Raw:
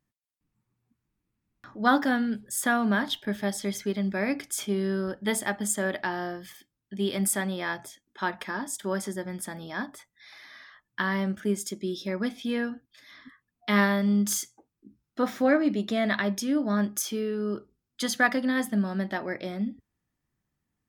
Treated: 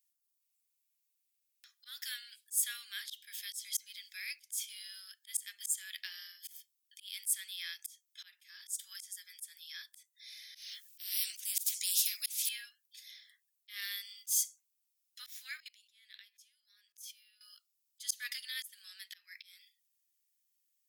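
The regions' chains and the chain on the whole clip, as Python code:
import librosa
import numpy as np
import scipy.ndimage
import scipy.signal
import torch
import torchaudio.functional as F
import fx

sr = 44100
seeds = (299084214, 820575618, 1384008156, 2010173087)

y = fx.chain(x, sr, fx.highpass(hz=1200.0, slope=6),
    fx.spectral_comp(ratio=4.0), at=(10.55, 12.49))
y = fx.chain(y, sr, fx.level_steps(step_db=22),
    fx.notch(hz=1200.0, q=13.0), at=(15.6, 17.41))
y = scipy.signal.sosfilt(scipy.signal.cheby2(4, 80, 380.0, 'highpass', fs=sr, output='sos'), y)
y = np.diff(y, prepend=0.0)
y = fx.auto_swell(y, sr, attack_ms=253.0)
y = F.gain(torch.from_numpy(y), 7.5).numpy()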